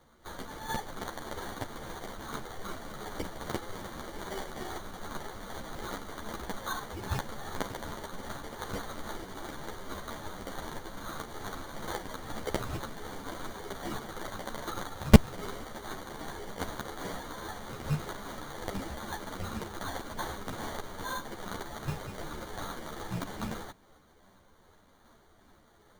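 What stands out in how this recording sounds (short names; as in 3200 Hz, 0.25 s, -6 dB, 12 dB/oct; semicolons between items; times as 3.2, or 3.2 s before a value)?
phasing stages 2, 2.5 Hz, lowest notch 690–4200 Hz; aliases and images of a low sample rate 2600 Hz, jitter 0%; a shimmering, thickened sound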